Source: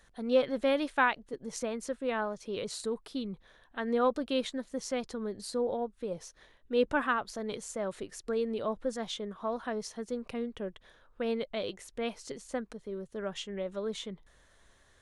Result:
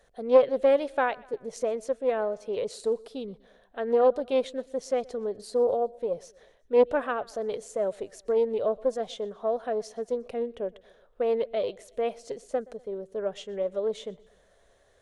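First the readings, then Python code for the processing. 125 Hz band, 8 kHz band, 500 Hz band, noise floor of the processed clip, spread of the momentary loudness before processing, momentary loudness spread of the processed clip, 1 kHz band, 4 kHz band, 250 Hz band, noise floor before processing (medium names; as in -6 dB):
no reading, -3.0 dB, +8.0 dB, -63 dBFS, 12 LU, 13 LU, +2.5 dB, -3.5 dB, -1.5 dB, -64 dBFS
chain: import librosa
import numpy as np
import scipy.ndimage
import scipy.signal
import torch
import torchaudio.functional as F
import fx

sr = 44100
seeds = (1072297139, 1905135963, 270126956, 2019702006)

y = fx.band_shelf(x, sr, hz=550.0, db=11.0, octaves=1.1)
y = fx.echo_feedback(y, sr, ms=123, feedback_pct=51, wet_db=-24.0)
y = fx.doppler_dist(y, sr, depth_ms=0.15)
y = y * librosa.db_to_amplitude(-3.0)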